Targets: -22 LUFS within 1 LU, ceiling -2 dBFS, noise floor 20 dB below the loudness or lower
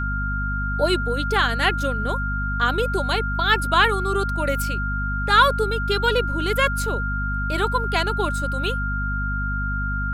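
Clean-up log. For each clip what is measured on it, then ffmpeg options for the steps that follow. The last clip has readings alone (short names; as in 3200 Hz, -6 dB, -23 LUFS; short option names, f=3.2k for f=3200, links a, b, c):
hum 50 Hz; harmonics up to 250 Hz; hum level -24 dBFS; steady tone 1400 Hz; tone level -26 dBFS; loudness -22.0 LUFS; peak -3.5 dBFS; loudness target -22.0 LUFS
-> -af "bandreject=f=50:t=h:w=4,bandreject=f=100:t=h:w=4,bandreject=f=150:t=h:w=4,bandreject=f=200:t=h:w=4,bandreject=f=250:t=h:w=4"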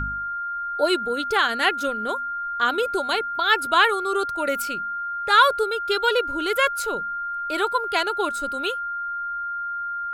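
hum none; steady tone 1400 Hz; tone level -26 dBFS
-> -af "bandreject=f=1.4k:w=30"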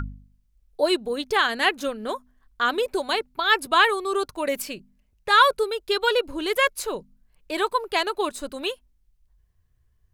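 steady tone none; loudness -23.5 LUFS; peak -5.5 dBFS; loudness target -22.0 LUFS
-> -af "volume=1.5dB"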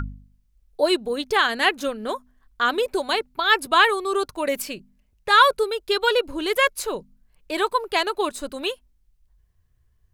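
loudness -22.0 LUFS; peak -4.0 dBFS; noise floor -64 dBFS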